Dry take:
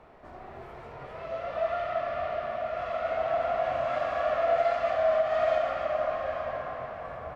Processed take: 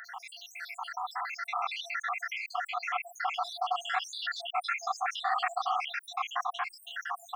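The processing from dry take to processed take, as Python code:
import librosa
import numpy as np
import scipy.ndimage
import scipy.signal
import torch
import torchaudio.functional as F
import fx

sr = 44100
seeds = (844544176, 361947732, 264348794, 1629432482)

y = fx.spec_dropout(x, sr, seeds[0], share_pct=79)
y = fx.brickwall_highpass(y, sr, low_hz=710.0)
y = fx.high_shelf(y, sr, hz=4300.0, db=5.0)
y = fx.env_flatten(y, sr, amount_pct=50)
y = y * librosa.db_to_amplitude(6.0)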